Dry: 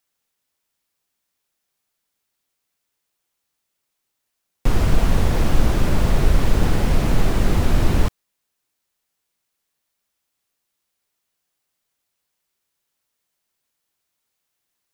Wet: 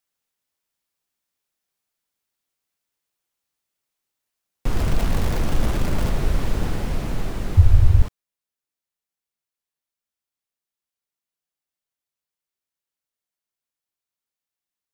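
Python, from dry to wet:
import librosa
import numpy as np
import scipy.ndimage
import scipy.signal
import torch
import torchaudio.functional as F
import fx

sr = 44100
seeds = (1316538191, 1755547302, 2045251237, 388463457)

y = fx.zero_step(x, sr, step_db=-22.5, at=(4.71, 6.1))
y = fx.low_shelf_res(y, sr, hz=140.0, db=12.5, q=3.0, at=(7.57, 8.02))
y = fx.rider(y, sr, range_db=4, speed_s=2.0)
y = F.gain(torch.from_numpy(y), -9.0).numpy()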